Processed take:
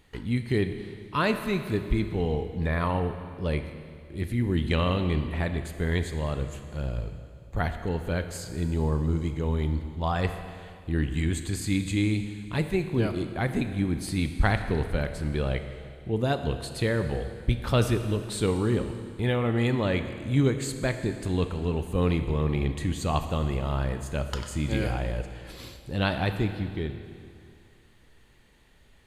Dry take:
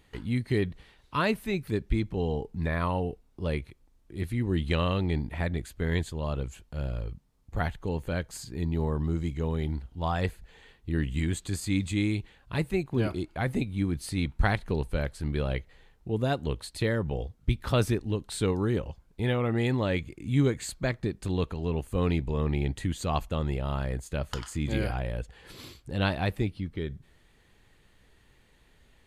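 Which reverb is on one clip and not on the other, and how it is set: Schroeder reverb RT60 2.3 s, combs from 26 ms, DRR 8 dB; trim +1.5 dB

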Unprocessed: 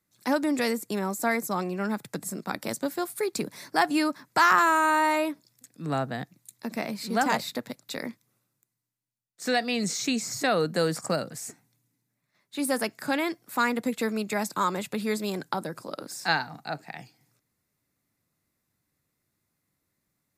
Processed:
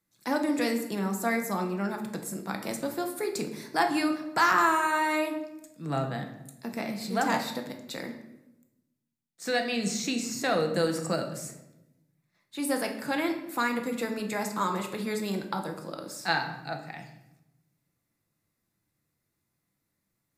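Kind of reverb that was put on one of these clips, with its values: simulated room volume 310 m³, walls mixed, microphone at 0.74 m; trim -3.5 dB

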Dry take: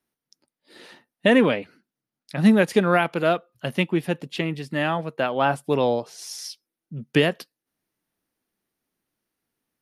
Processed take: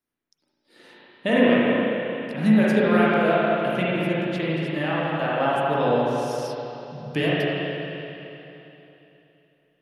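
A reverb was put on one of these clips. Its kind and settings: spring tank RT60 3.2 s, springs 33/37/56 ms, chirp 50 ms, DRR -7.5 dB; trim -7.5 dB

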